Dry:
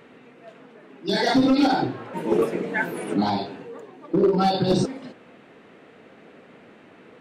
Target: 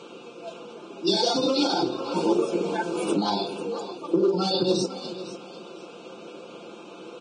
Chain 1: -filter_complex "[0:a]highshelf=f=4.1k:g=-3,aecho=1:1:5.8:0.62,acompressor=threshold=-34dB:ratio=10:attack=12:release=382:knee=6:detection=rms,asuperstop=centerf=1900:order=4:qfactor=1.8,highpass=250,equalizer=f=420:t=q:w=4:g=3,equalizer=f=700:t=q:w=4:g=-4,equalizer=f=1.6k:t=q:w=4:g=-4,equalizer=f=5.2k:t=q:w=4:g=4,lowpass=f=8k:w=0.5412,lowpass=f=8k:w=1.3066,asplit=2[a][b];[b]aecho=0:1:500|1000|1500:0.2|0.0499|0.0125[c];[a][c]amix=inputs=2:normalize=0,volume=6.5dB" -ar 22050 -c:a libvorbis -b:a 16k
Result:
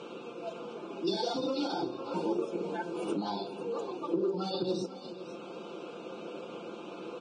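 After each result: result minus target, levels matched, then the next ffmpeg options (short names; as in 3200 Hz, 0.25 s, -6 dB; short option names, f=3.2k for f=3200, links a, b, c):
compressor: peak gain reduction +9 dB; 8000 Hz band -4.5 dB
-filter_complex "[0:a]highshelf=f=4.1k:g=-3,aecho=1:1:5.8:0.62,acompressor=threshold=-24dB:ratio=10:attack=12:release=382:knee=6:detection=rms,asuperstop=centerf=1900:order=4:qfactor=1.8,highpass=250,equalizer=f=420:t=q:w=4:g=3,equalizer=f=700:t=q:w=4:g=-4,equalizer=f=1.6k:t=q:w=4:g=-4,equalizer=f=5.2k:t=q:w=4:g=4,lowpass=f=8k:w=0.5412,lowpass=f=8k:w=1.3066,asplit=2[a][b];[b]aecho=0:1:500|1000|1500:0.2|0.0499|0.0125[c];[a][c]amix=inputs=2:normalize=0,volume=6.5dB" -ar 22050 -c:a libvorbis -b:a 16k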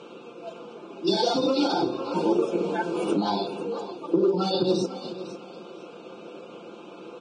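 8000 Hz band -5.5 dB
-filter_complex "[0:a]highshelf=f=4.1k:g=6.5,aecho=1:1:5.8:0.62,acompressor=threshold=-24dB:ratio=10:attack=12:release=382:knee=6:detection=rms,asuperstop=centerf=1900:order=4:qfactor=1.8,highpass=250,equalizer=f=420:t=q:w=4:g=3,equalizer=f=700:t=q:w=4:g=-4,equalizer=f=1.6k:t=q:w=4:g=-4,equalizer=f=5.2k:t=q:w=4:g=4,lowpass=f=8k:w=0.5412,lowpass=f=8k:w=1.3066,asplit=2[a][b];[b]aecho=0:1:500|1000|1500:0.2|0.0499|0.0125[c];[a][c]amix=inputs=2:normalize=0,volume=6.5dB" -ar 22050 -c:a libvorbis -b:a 16k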